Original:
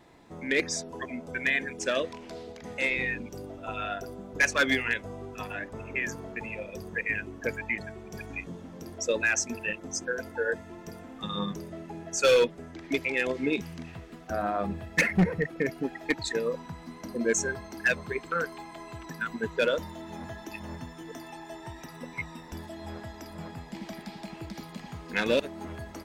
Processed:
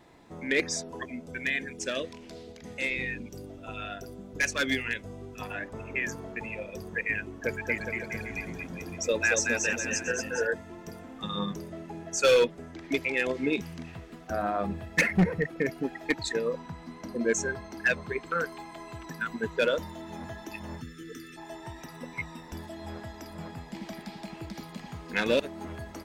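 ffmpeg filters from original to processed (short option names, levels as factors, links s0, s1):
-filter_complex "[0:a]asettb=1/sr,asplit=3[s0][s1][s2];[s0]atrim=end=1.034[s3];[s1]atrim=start=1.03:end=5.42,asetpts=PTS-STARTPTS,afade=t=in:d=0.004:c=qsin,afade=t=out:st=4.386:d=0.004:c=qsin,equalizer=f=930:t=o:w=2:g=-7.5[s4];[s2]atrim=start=5.416[s5];[s3][s4]acrossfade=d=0.004:c1=hsin:c2=qsin[s6];[s6][s5]acrossfade=d=0.004:c1=qsin:c2=hsin,asettb=1/sr,asplit=3[s7][s8][s9];[s7]atrim=end=7.254[s10];[s8]atrim=start=7.25:end=10.47,asetpts=PTS-STARTPTS,afade=t=in:d=0.004:c=qsin,afade=t=out:st=3.216:d=0.004:c=qsin,aecho=1:1:230|414|561.2|679|773.2:0.631|0.398|0.251|0.158|0.1,atrim=end_sample=142002[s11];[s9]atrim=start=10.466[s12];[s10][s11]acrossfade=d=0.004:c1=hsin:c2=qsin[s13];[s13][s12]acrossfade=d=0.004:c1=qsin:c2=hsin,asettb=1/sr,asplit=3[s14][s15][s16];[s14]atrim=end=16.344[s17];[s15]atrim=start=16.34:end=18.27,asetpts=PTS-STARTPTS,afade=t=in:d=0.004:c=qsin,afade=t=out:st=1.926:d=0.004:c=qsin,highshelf=f=8200:g=-8[s18];[s16]atrim=start=18.266[s19];[s17][s18]acrossfade=d=0.004:c1=hsin:c2=qsin[s20];[s20][s19]acrossfade=d=0.004:c1=qsin:c2=hsin,asplit=3[s21][s22][s23];[s21]afade=t=out:st=20.8:d=0.02[s24];[s22]asuperstop=centerf=760:order=20:qfactor=1.1,afade=t=in:st=20.8:d=0.02,afade=t=out:st=21.36:d=0.02[s25];[s23]afade=t=in:st=21.36:d=0.02[s26];[s24][s25][s26]amix=inputs=3:normalize=0"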